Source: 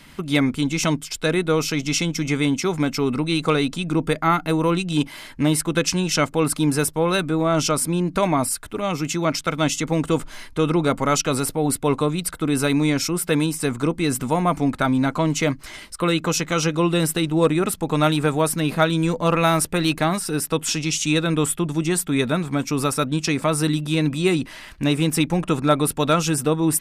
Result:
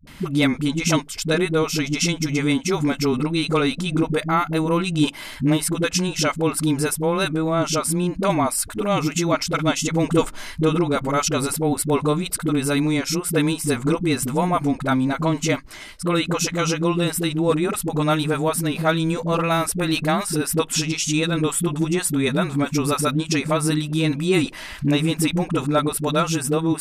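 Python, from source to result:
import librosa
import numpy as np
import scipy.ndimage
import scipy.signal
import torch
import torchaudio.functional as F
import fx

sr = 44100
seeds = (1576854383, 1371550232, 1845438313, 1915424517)

y = fx.dispersion(x, sr, late='highs', ms=72.0, hz=310.0)
y = fx.rider(y, sr, range_db=10, speed_s=0.5)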